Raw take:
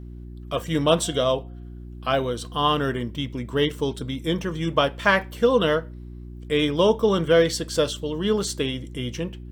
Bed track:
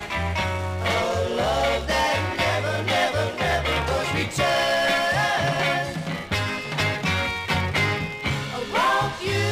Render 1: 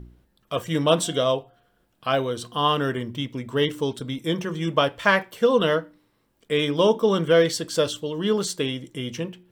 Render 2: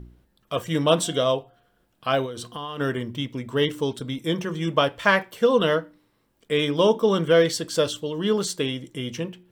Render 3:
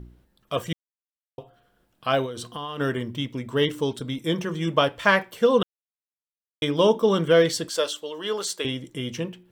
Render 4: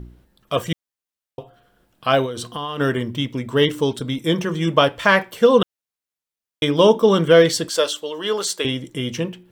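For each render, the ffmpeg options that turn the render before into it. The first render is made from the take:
-af "bandreject=f=60:t=h:w=4,bandreject=f=120:t=h:w=4,bandreject=f=180:t=h:w=4,bandreject=f=240:t=h:w=4,bandreject=f=300:t=h:w=4,bandreject=f=360:t=h:w=4"
-filter_complex "[0:a]asplit=3[s0][s1][s2];[s0]afade=t=out:st=2.25:d=0.02[s3];[s1]acompressor=threshold=0.0355:ratio=16:attack=3.2:release=140:knee=1:detection=peak,afade=t=in:st=2.25:d=0.02,afade=t=out:st=2.79:d=0.02[s4];[s2]afade=t=in:st=2.79:d=0.02[s5];[s3][s4][s5]amix=inputs=3:normalize=0"
-filter_complex "[0:a]asettb=1/sr,asplit=3[s0][s1][s2];[s0]atrim=end=7.694[s3];[s1]atrim=start=7.69:end=8.65,asetpts=PTS-STARTPTS,afade=t=in:d=0.004:c=qsin,afade=t=out:st=0.956:d=0.004:c=qsin,highpass=510[s4];[s2]atrim=start=8.646[s5];[s3][s4]acrossfade=d=0.004:c1=hsin:c2=qsin[s6];[s6][s5]acrossfade=d=0.004:c1=qsin:c2=hsin,asplit=5[s7][s8][s9][s10][s11];[s7]atrim=end=0.73,asetpts=PTS-STARTPTS,afade=t=out:st=0.726:d=0.004:c=hsin[s12];[s8]atrim=start=0.73:end=1.38,asetpts=PTS-STARTPTS,volume=0[s13];[s9]atrim=start=1.38:end=5.63,asetpts=PTS-STARTPTS,afade=t=in:d=0.004:c=hsin,afade=t=out:st=4.246:d=0.004:c=hsin[s14];[s10]atrim=start=5.63:end=6.62,asetpts=PTS-STARTPTS,volume=0[s15];[s11]atrim=start=6.62,asetpts=PTS-STARTPTS,afade=t=in:d=0.004:c=hsin[s16];[s12][s13][s14][s15][s16]concat=n=5:v=0:a=1"
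-af "volume=1.88,alimiter=limit=0.891:level=0:latency=1"

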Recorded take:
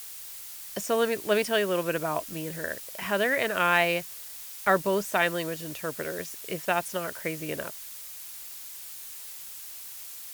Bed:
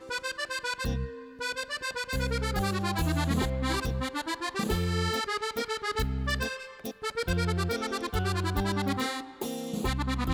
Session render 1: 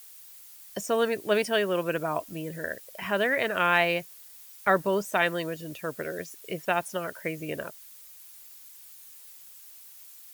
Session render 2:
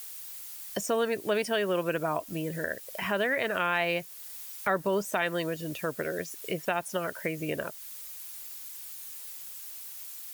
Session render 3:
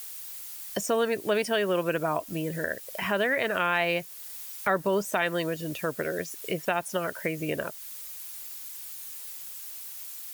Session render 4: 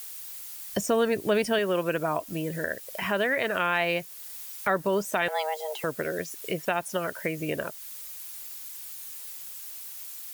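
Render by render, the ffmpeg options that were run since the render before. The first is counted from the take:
-af "afftdn=nr=10:nf=-42"
-filter_complex "[0:a]asplit=2[s0][s1];[s1]alimiter=limit=0.112:level=0:latency=1:release=136,volume=1.19[s2];[s0][s2]amix=inputs=2:normalize=0,acompressor=threshold=0.0126:ratio=1.5"
-af "volume=1.26"
-filter_complex "[0:a]asettb=1/sr,asplit=3[s0][s1][s2];[s0]atrim=end=0.734[s3];[s1]atrim=start=0.73:end=1.59,asetpts=PTS-STARTPTS,afade=t=in:d=0.004:c=qsin,afade=t=out:st=0.856:d=0.004:c=qsin,lowshelf=f=210:g=9.5[s4];[s2]atrim=start=1.586[s5];[s3][s4]acrossfade=d=0.004:c1=hsin:c2=qsin[s6];[s6][s5]acrossfade=d=0.004:c1=qsin:c2=hsin,asettb=1/sr,asplit=3[s7][s8][s9];[s7]atrim=end=5.284[s10];[s8]atrim=start=5.28:end=5.84,asetpts=PTS-STARTPTS,afade=t=in:d=0.004:c=qsin,afade=t=out:st=0.556:d=0.004:c=qsin,afreqshift=310[s11];[s9]atrim=start=5.836[s12];[s10][s11]acrossfade=d=0.004:c1=hsin:c2=qsin[s13];[s13][s12]acrossfade=d=0.004:c1=qsin:c2=hsin"

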